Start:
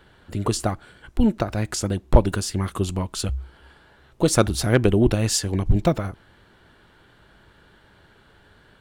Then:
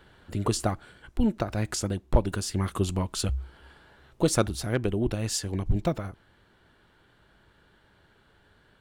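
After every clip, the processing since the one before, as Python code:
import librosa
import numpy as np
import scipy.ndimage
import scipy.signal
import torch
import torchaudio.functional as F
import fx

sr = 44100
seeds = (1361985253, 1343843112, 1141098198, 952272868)

y = fx.rider(x, sr, range_db=4, speed_s=0.5)
y = F.gain(torch.from_numpy(y), -6.0).numpy()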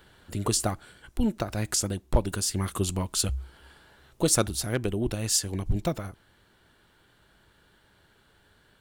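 y = fx.high_shelf(x, sr, hz=5000.0, db=11.5)
y = F.gain(torch.from_numpy(y), -1.5).numpy()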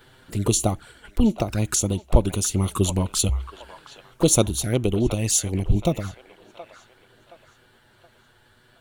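y = fx.env_flanger(x, sr, rest_ms=8.8, full_db=-25.0)
y = fx.echo_wet_bandpass(y, sr, ms=722, feedback_pct=37, hz=1400.0, wet_db=-9)
y = F.gain(torch.from_numpy(y), 7.0).numpy()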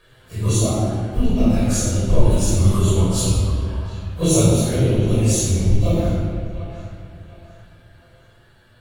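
y = fx.phase_scramble(x, sr, seeds[0], window_ms=100)
y = fx.room_shoebox(y, sr, seeds[1], volume_m3=3600.0, walls='mixed', distance_m=5.6)
y = F.gain(torch.from_numpy(y), -5.5).numpy()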